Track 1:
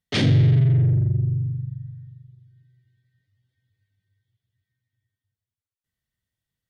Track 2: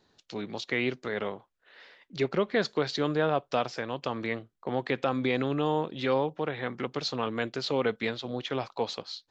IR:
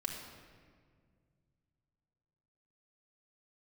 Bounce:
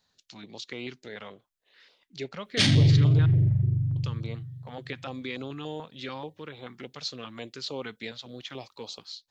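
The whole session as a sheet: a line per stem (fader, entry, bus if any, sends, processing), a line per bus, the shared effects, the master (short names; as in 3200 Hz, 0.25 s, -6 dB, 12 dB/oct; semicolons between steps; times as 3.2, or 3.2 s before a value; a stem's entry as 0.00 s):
-3.5 dB, 2.45 s, send -11.5 dB, dry
-7.5 dB, 0.00 s, muted 3.26–3.96, no send, dry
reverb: on, RT60 1.9 s, pre-delay 4 ms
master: high shelf 3600 Hz +11 dB; stepped notch 6.9 Hz 350–1800 Hz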